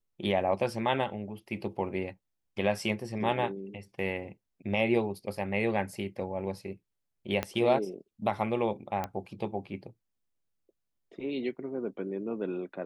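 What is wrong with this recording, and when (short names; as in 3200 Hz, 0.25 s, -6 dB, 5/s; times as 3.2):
7.43 pop -15 dBFS
9.04 pop -19 dBFS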